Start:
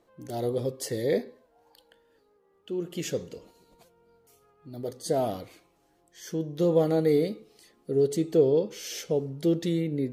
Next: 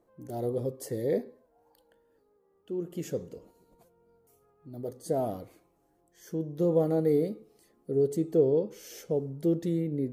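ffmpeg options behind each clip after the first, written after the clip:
-af "equalizer=f=3.5k:t=o:w=2.3:g=-12.5,volume=-1.5dB"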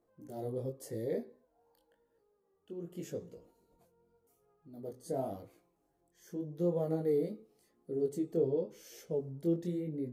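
-af "flanger=delay=17:depth=6.8:speed=0.89,volume=-4dB"

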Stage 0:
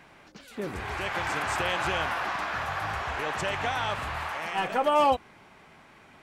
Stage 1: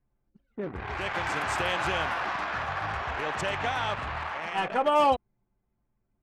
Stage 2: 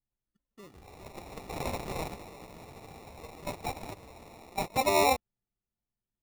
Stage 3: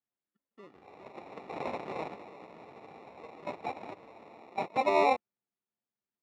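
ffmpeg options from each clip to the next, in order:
-af "anlmdn=6.31"
-af "acrusher=samples=28:mix=1:aa=0.000001,agate=range=-14dB:threshold=-27dB:ratio=16:detection=peak,volume=-2.5dB"
-af "highpass=240,lowpass=2.5k"

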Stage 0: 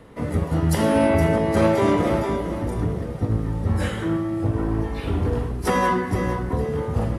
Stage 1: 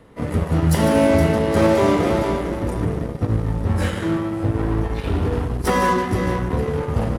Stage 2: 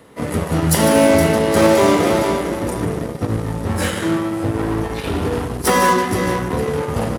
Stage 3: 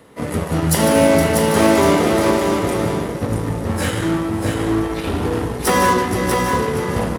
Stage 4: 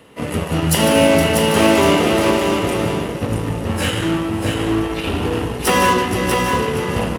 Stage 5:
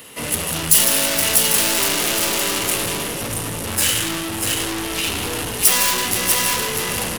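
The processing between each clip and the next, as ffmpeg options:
-filter_complex "[0:a]aecho=1:1:148:0.335,asplit=2[a][b];[b]acrusher=bits=3:mix=0:aa=0.5,volume=-5dB[c];[a][c]amix=inputs=2:normalize=0,volume=-2dB"
-af "highpass=f=180:p=1,highshelf=f=5k:g=9,volume=4dB"
-af "aecho=1:1:641:0.562,volume=-1dB"
-af "equalizer=f=2.8k:w=4.2:g=10.5"
-af "aeval=exprs='(tanh(17.8*val(0)+0.2)-tanh(0.2))/17.8':c=same,crystalizer=i=8:c=0,volume=-1dB"

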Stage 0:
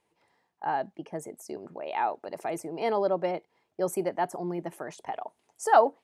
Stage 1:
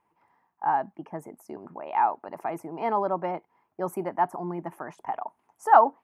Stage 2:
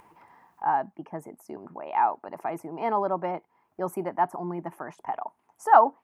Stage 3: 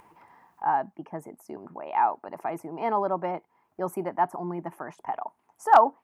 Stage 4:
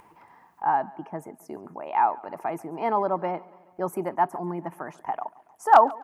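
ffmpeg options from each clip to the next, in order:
-af "equalizer=f=250:t=o:w=1:g=3,equalizer=f=500:t=o:w=1:g=-7,equalizer=f=1k:t=o:w=1:g=10,equalizer=f=4k:t=o:w=1:g=-12,equalizer=f=8k:t=o:w=1:g=-10"
-af "acompressor=mode=upward:threshold=-43dB:ratio=2.5"
-af "asoftclip=type=hard:threshold=-7dB"
-af "aecho=1:1:141|282|423|564:0.0794|0.0453|0.0258|0.0147,volume=1.5dB"

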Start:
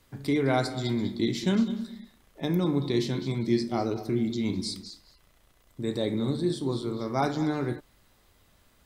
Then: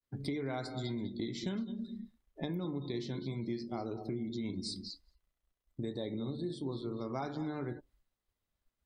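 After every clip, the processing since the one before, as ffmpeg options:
-af "agate=range=-33dB:threshold=-56dB:ratio=3:detection=peak,afftdn=nr=21:nf=-45,acompressor=threshold=-35dB:ratio=6"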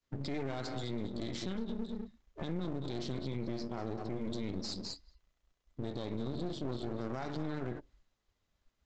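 -af "alimiter=level_in=10dB:limit=-24dB:level=0:latency=1:release=69,volume=-10dB,aresample=16000,aeval=exprs='clip(val(0),-1,0.0015)':c=same,aresample=44100,volume=7dB"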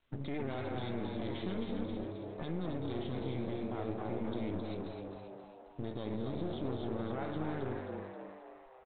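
-filter_complex "[0:a]asplit=2[a][b];[b]asplit=7[c][d][e][f][g][h][i];[c]adelay=266,afreqshift=98,volume=-5dB[j];[d]adelay=532,afreqshift=196,volume=-10dB[k];[e]adelay=798,afreqshift=294,volume=-15.1dB[l];[f]adelay=1064,afreqshift=392,volume=-20.1dB[m];[g]adelay=1330,afreqshift=490,volume=-25.1dB[n];[h]adelay=1596,afreqshift=588,volume=-30.2dB[o];[i]adelay=1862,afreqshift=686,volume=-35.2dB[p];[j][k][l][m][n][o][p]amix=inputs=7:normalize=0[q];[a][q]amix=inputs=2:normalize=0,volume=-1dB" -ar 8000 -c:a pcm_mulaw

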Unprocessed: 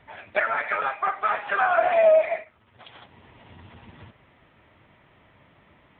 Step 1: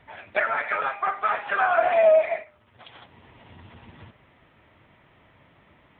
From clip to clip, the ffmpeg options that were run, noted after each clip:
-af "bandreject=f=200.4:t=h:w=4,bandreject=f=400.8:t=h:w=4,bandreject=f=601.2:t=h:w=4,bandreject=f=801.6:t=h:w=4,bandreject=f=1.002k:t=h:w=4,bandreject=f=1.2024k:t=h:w=4,bandreject=f=1.4028k:t=h:w=4"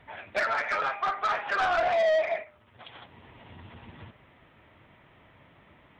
-af "asoftclip=type=tanh:threshold=-21dB"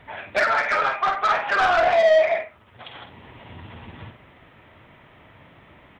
-filter_complex "[0:a]asplit=2[a][b];[b]adelay=49,volume=-8.5dB[c];[a][c]amix=inputs=2:normalize=0,volume=6.5dB"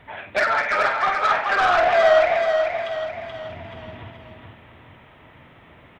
-af "aecho=1:1:430|860|1290|1720|2150:0.562|0.247|0.109|0.0479|0.0211"

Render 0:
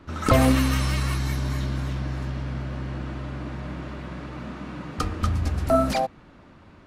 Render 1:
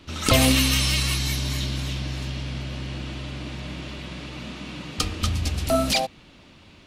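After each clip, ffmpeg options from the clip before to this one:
-af "highshelf=f=2.1k:t=q:w=1.5:g=10.5,volume=-1dB"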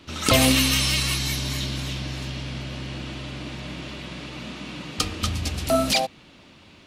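-af "lowshelf=f=66:g=-10,volume=1dB"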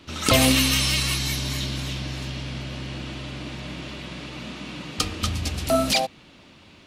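-af anull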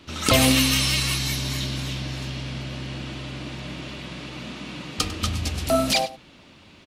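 -af "aecho=1:1:99:0.15"

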